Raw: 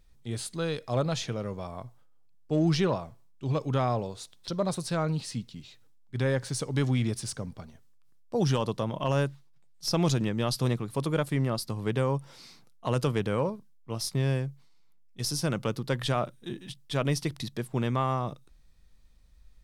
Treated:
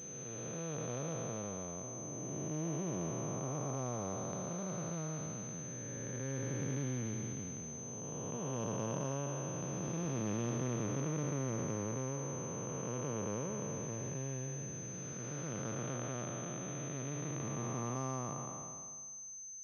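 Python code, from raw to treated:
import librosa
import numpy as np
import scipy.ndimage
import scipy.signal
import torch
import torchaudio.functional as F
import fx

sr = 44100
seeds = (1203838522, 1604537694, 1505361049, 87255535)

y = fx.spec_blur(x, sr, span_ms=942.0)
y = scipy.signal.sosfilt(scipy.signal.butter(2, 120.0, 'highpass', fs=sr, output='sos'), y)
y = fx.pwm(y, sr, carrier_hz=6200.0)
y = y * librosa.db_to_amplitude(-3.5)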